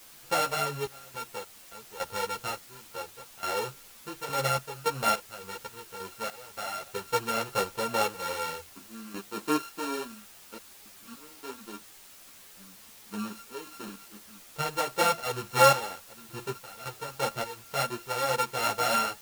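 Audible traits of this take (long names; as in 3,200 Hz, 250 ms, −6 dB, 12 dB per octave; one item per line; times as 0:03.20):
a buzz of ramps at a fixed pitch in blocks of 32 samples
sample-and-hold tremolo, depth 100%
a quantiser's noise floor 8 bits, dither triangular
a shimmering, thickened sound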